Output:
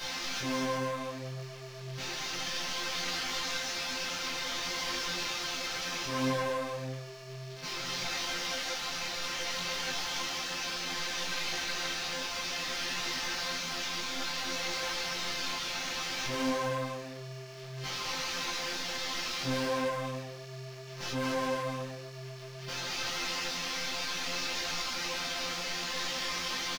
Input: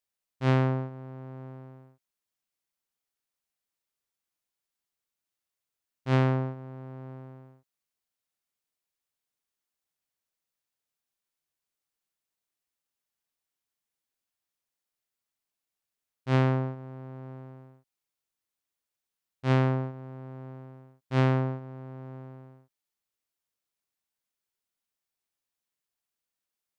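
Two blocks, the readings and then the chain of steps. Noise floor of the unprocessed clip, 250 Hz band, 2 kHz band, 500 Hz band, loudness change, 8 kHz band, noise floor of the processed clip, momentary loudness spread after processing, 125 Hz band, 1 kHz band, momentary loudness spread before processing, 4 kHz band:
under -85 dBFS, -4.0 dB, +10.0 dB, +0.5 dB, -5.5 dB, no reading, -44 dBFS, 9 LU, -12.0 dB, +3.5 dB, 20 LU, +20.5 dB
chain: one-bit delta coder 32 kbps, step -29.5 dBFS; chord resonator F3 fifth, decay 0.28 s; waveshaping leveller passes 5; on a send: bouncing-ball echo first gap 220 ms, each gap 0.6×, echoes 5; on the sum: detune thickener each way 21 cents

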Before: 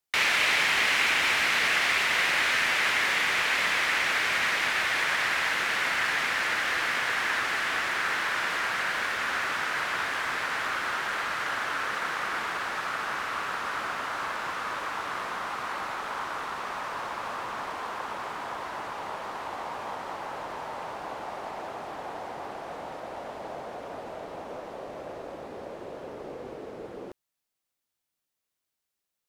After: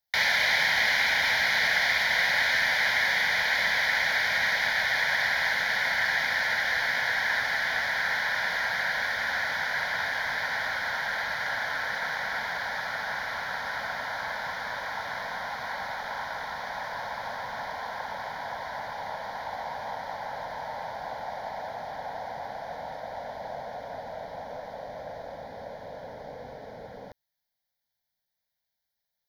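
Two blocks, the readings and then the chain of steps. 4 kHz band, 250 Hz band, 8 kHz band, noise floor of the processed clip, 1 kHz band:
0.0 dB, -5.0 dB, -4.0 dB, -84 dBFS, -1.5 dB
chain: static phaser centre 1.8 kHz, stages 8; trim +3 dB

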